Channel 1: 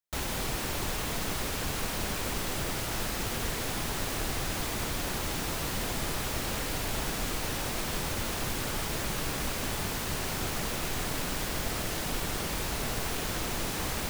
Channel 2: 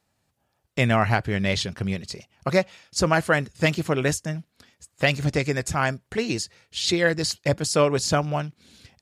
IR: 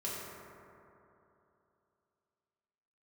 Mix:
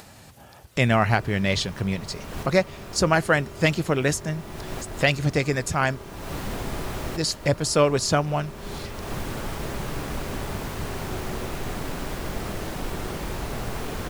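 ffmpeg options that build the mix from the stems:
-filter_complex "[0:a]highshelf=f=2k:g=-10,adelay=700,volume=2.5dB,asplit=2[a][b];[b]volume=-13dB[c];[1:a]acompressor=mode=upward:threshold=-28dB:ratio=2.5,volume=0.5dB,asplit=3[d][e][f];[d]atrim=end=6.07,asetpts=PTS-STARTPTS,afade=t=out:st=6.066:d=0.004:c=hsin[g];[e]atrim=start=6.07:end=7.16,asetpts=PTS-STARTPTS,volume=0[h];[f]atrim=start=7.16,asetpts=PTS-STARTPTS,afade=t=in:d=0.004:c=hsin[i];[g][h][i]concat=n=3:v=0:a=1,asplit=2[j][k];[k]apad=whole_len=652630[l];[a][l]sidechaincompress=threshold=-42dB:ratio=8:attack=6.2:release=267[m];[2:a]atrim=start_sample=2205[n];[c][n]afir=irnorm=-1:irlink=0[o];[m][j][o]amix=inputs=3:normalize=0"

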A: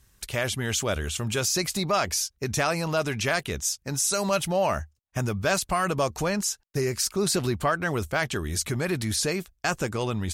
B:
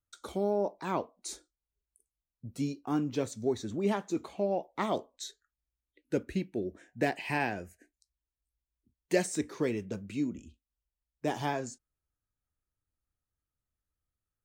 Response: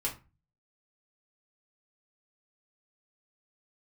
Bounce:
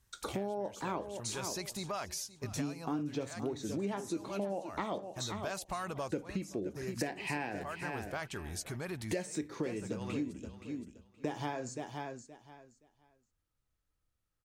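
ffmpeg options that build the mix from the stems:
-filter_complex "[0:a]equalizer=f=880:t=o:w=0.77:g=4,volume=-12.5dB,asplit=2[a][b];[b]volume=-19.5dB[c];[1:a]highshelf=f=9.8k:g=-7.5,volume=3dB,asplit=4[d][e][f][g];[e]volume=-13dB[h];[f]volume=-11.5dB[i];[g]apad=whole_len=455792[j];[a][j]sidechaincompress=threshold=-31dB:ratio=8:attack=49:release=702[k];[2:a]atrim=start_sample=2205[l];[h][l]afir=irnorm=-1:irlink=0[m];[c][i]amix=inputs=2:normalize=0,aecho=0:1:522|1044|1566:1|0.19|0.0361[n];[k][d][m][n]amix=inputs=4:normalize=0,acompressor=threshold=-34dB:ratio=5"

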